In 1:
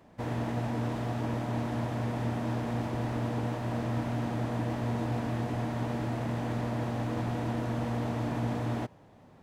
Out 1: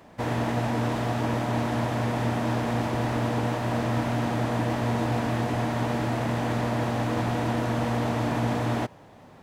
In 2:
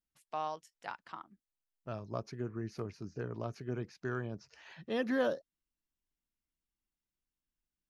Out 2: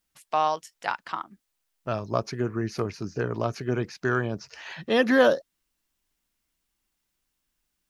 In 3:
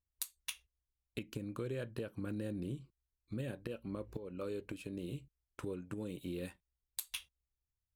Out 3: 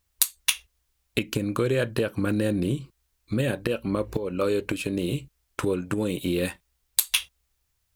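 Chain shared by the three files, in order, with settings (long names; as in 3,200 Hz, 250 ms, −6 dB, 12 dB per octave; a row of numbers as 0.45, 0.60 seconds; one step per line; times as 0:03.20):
low-shelf EQ 460 Hz −5.5 dB
loudness normalisation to −27 LKFS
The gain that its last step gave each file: +9.5, +15.0, +19.5 decibels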